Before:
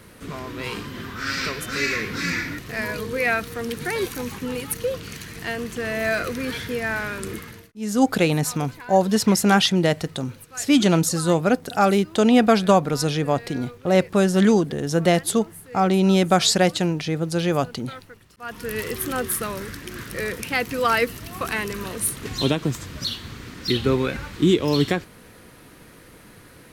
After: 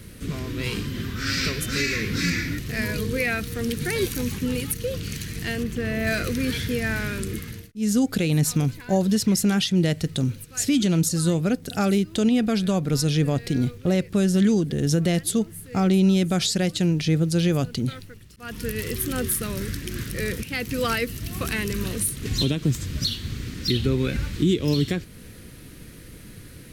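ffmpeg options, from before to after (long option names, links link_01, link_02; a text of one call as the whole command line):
ffmpeg -i in.wav -filter_complex "[0:a]asettb=1/sr,asplit=3[link_01][link_02][link_03];[link_01]atrim=end=5.634[link_04];[link_02]atrim=start=5.63:end=6.07,asetpts=PTS-STARTPTS,afade=type=in:duration=0.004:curve=qsin,afade=type=out:start_time=0.436:duration=0.004:curve=qsin,equalizer=frequency=8300:width_type=o:width=2.5:gain=-8.5[link_05];[link_03]atrim=start=6.066[link_06];[link_04][link_05]acrossfade=duration=0.004:curve1=hsin:curve2=qsin[link_07];[link_07][link_06]acrossfade=duration=0.004:curve1=qsin:curve2=hsin,equalizer=frequency=910:width=0.82:gain=-13,alimiter=limit=-17.5dB:level=0:latency=1:release=295,lowshelf=frequency=140:gain=7,volume=4dB" out.wav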